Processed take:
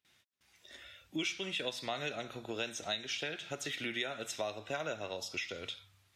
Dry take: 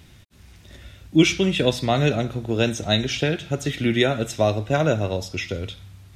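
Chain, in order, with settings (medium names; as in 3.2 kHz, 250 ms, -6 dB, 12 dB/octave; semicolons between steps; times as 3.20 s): spectral noise reduction 10 dB; gate with hold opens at -49 dBFS; high-pass 1.4 kHz 6 dB/octave; treble shelf 5.5 kHz -5 dB; compression 3:1, threshold -37 dBFS, peak gain reduction 13.5 dB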